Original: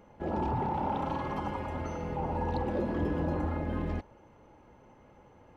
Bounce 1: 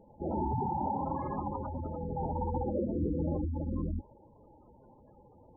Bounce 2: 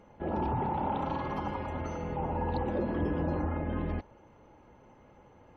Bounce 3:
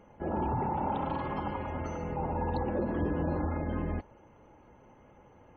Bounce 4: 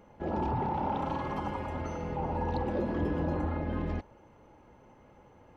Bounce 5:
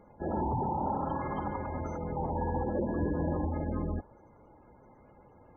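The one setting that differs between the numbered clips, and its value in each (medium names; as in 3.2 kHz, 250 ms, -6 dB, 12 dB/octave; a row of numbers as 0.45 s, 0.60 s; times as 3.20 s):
spectral gate, under each frame's peak: -10 dB, -45 dB, -35 dB, -60 dB, -20 dB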